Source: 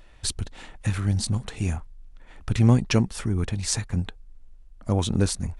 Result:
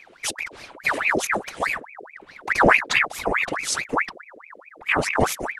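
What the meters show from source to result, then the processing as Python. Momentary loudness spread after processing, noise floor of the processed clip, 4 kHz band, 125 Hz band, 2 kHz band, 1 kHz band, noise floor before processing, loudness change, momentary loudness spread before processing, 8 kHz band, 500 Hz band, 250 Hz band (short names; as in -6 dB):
16 LU, -50 dBFS, +2.0 dB, -14.5 dB, +18.0 dB, +15.0 dB, -49 dBFS, +3.0 dB, 16 LU, +1.0 dB, +7.0 dB, -4.5 dB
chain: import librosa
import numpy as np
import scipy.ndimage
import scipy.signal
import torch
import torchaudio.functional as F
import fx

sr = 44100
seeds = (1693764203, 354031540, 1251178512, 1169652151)

y = fx.whisperise(x, sr, seeds[0])
y = fx.ring_lfo(y, sr, carrier_hz=1400.0, swing_pct=75, hz=4.7)
y = F.gain(torch.from_numpy(y), 4.0).numpy()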